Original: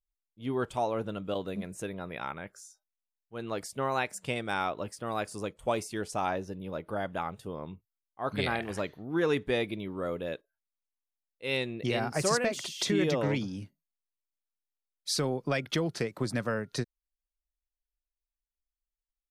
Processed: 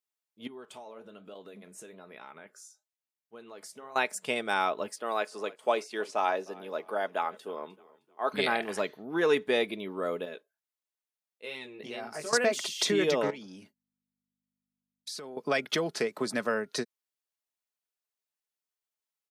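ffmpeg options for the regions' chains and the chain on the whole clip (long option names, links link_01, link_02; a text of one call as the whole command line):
ffmpeg -i in.wav -filter_complex "[0:a]asettb=1/sr,asplit=3[link_01][link_02][link_03];[link_01]atrim=end=0.474[link_04];[link_02]atrim=start=0.47:end=3.96,asetpts=PTS-STARTPTS,afade=type=in:duration=0.004:curve=qsin,afade=type=out:start_time=3.486:duration=0.004:curve=qsin,acompressor=threshold=-40dB:ratio=8:attack=3.2:release=140:knee=1:detection=peak,flanger=delay=5.7:depth=8.1:regen=-71:speed=1.1:shape=triangular[link_05];[link_03]atrim=start=3.956[link_06];[link_04][link_05]acrossfade=duration=0.004:curve1=hsin:curve2=qsin[link_07];[link_07][link_06]acrossfade=duration=0.004:curve1=qsin:curve2=hsin,asettb=1/sr,asplit=3[link_08][link_09][link_10];[link_08]atrim=end=4.964[link_11];[link_09]atrim=start=4.96:end=8.34,asetpts=PTS-STARTPTS,afade=type=in:duration=0.004:curve=qsin,afade=type=out:start_time=3.376:duration=0.004:curve=qsin,highpass=300,acrossover=split=5100[link_12][link_13];[link_13]acompressor=threshold=-59dB:ratio=4:attack=1:release=60[link_14];[link_12][link_14]amix=inputs=2:normalize=0,asplit=4[link_15][link_16][link_17][link_18];[link_16]adelay=308,afreqshift=-47,volume=-22dB[link_19];[link_17]adelay=616,afreqshift=-94,volume=-30.4dB[link_20];[link_18]adelay=924,afreqshift=-141,volume=-38.8dB[link_21];[link_15][link_19][link_20][link_21]amix=inputs=4:normalize=0,atrim=end_sample=149058[link_22];[link_10]atrim=start=8.336[link_23];[link_11][link_22]acrossfade=duration=0.004:curve1=hsin:curve2=qsin[link_24];[link_24][link_23]acrossfade=duration=0.004:curve1=qsin:curve2=hsin,asettb=1/sr,asplit=3[link_25][link_26][link_27];[link_25]atrim=end=10.254[link_28];[link_26]atrim=start=10.25:end=12.33,asetpts=PTS-STARTPTS,afade=type=in:duration=0.004:curve=qsin,afade=type=out:start_time=2.076:duration=0.004:curve=qsin,acompressor=threshold=-35dB:ratio=4:attack=3.2:release=140:knee=1:detection=peak,flanger=delay=16:depth=3.7:speed=2.3[link_29];[link_27]atrim=start=12.326[link_30];[link_28][link_29]acrossfade=duration=0.004:curve1=hsin:curve2=qsin[link_31];[link_31][link_30]acrossfade=duration=0.004:curve1=qsin:curve2=hsin,asettb=1/sr,asplit=3[link_32][link_33][link_34];[link_32]atrim=end=13.304[link_35];[link_33]atrim=start=13.3:end=15.37,asetpts=PTS-STARTPTS,afade=type=in:duration=0.004:curve=qsin,afade=type=out:start_time=2.066:duration=0.004:curve=qsin,agate=range=-33dB:threshold=-57dB:ratio=3:release=100:detection=peak,acompressor=threshold=-40dB:ratio=8:attack=3.2:release=140:knee=1:detection=peak,aeval=exprs='val(0)+0.000141*(sin(2*PI*50*n/s)+sin(2*PI*2*50*n/s)/2+sin(2*PI*3*50*n/s)/3+sin(2*PI*4*50*n/s)/4+sin(2*PI*5*50*n/s)/5)':channel_layout=same[link_36];[link_34]atrim=start=15.366[link_37];[link_35][link_36]acrossfade=duration=0.004:curve1=hsin:curve2=qsin[link_38];[link_38][link_37]acrossfade=duration=0.004:curve1=qsin:curve2=hsin,highpass=300,aecho=1:1:4.7:0.32,volume=3dB" out.wav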